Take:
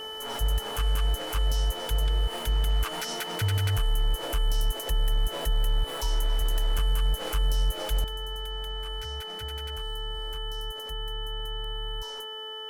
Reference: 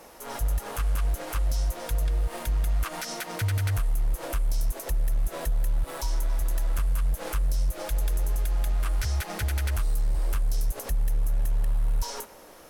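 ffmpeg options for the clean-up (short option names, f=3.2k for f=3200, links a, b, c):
-af "bandreject=f=437.5:t=h:w=4,bandreject=f=875:t=h:w=4,bandreject=f=1.3125k:t=h:w=4,bandreject=f=1.75k:t=h:w=4,bandreject=f=3k:w=30,asetnsamples=n=441:p=0,asendcmd='8.04 volume volume 11.5dB',volume=0dB"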